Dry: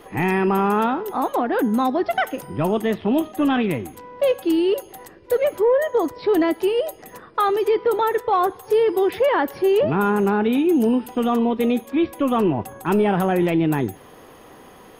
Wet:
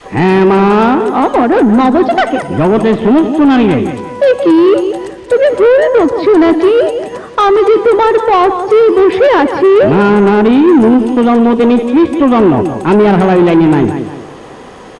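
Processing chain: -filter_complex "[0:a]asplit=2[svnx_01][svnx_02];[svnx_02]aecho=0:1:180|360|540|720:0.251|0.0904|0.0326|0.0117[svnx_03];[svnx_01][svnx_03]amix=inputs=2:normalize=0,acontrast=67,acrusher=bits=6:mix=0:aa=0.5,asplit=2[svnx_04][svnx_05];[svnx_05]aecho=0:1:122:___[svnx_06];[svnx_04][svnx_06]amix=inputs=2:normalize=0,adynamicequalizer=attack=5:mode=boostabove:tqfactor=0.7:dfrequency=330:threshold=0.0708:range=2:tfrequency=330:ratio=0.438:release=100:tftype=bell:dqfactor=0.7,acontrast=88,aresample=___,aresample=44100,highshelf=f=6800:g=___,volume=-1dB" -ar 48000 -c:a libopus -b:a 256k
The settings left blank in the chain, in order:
0.0794, 22050, -9.5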